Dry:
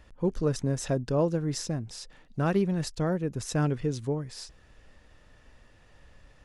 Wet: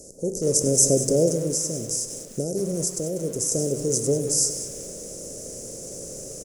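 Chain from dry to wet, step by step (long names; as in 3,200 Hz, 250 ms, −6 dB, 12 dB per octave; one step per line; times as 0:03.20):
compressor on every frequency bin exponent 0.6
spectral tilt +4 dB per octave
single-tap delay 97 ms −16 dB
convolution reverb RT60 1.4 s, pre-delay 6 ms, DRR 8.5 dB
automatic gain control gain up to 8 dB
high-shelf EQ 8,300 Hz −3.5 dB
0:01.30–0:03.52: downward compressor 6 to 1, threshold −24 dBFS, peak gain reduction 9 dB
elliptic band-stop filter 520–6,400 Hz, stop band 40 dB
feedback echo at a low word length 193 ms, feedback 35%, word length 7 bits, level −11.5 dB
level +4 dB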